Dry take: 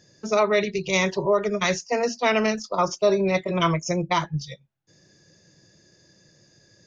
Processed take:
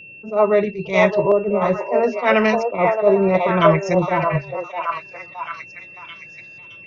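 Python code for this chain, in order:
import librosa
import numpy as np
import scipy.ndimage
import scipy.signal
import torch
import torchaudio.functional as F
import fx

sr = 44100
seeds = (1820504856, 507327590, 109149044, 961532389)

p1 = fx.high_shelf(x, sr, hz=3500.0, db=8.5)
p2 = fx.filter_lfo_lowpass(p1, sr, shape='saw_up', hz=0.76, low_hz=520.0, high_hz=2600.0, q=1.0)
p3 = p2 + 10.0 ** (-43.0 / 20.0) * np.sin(2.0 * np.pi * 2700.0 * np.arange(len(p2)) / sr)
p4 = p3 + fx.echo_stepped(p3, sr, ms=618, hz=690.0, octaves=0.7, feedback_pct=70, wet_db=-1.0, dry=0)
p5 = fx.attack_slew(p4, sr, db_per_s=180.0)
y = p5 * 10.0 ** (5.0 / 20.0)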